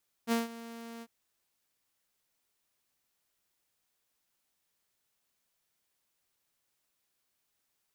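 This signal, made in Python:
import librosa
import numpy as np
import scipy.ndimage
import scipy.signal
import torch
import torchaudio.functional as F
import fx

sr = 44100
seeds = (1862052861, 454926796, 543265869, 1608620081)

y = fx.adsr_tone(sr, wave='saw', hz=231.0, attack_ms=49.0, decay_ms=157.0, sustain_db=-18.0, held_s=0.75, release_ms=49.0, level_db=-22.5)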